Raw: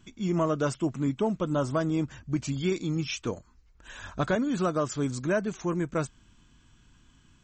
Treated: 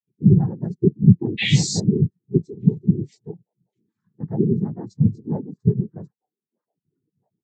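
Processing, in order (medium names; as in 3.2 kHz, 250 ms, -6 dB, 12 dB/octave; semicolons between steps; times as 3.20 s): octave divider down 1 oct, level +3 dB; high-pass 160 Hz 24 dB/octave; tone controls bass +11 dB, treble +12 dB; repeats whose band climbs or falls 634 ms, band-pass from 3.6 kHz, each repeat -1.4 oct, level -11 dB; painted sound rise, 1.37–1.80 s, 2.8–6.3 kHz -17 dBFS; noise-vocoded speech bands 6; spectral contrast expander 2.5:1; trim +2.5 dB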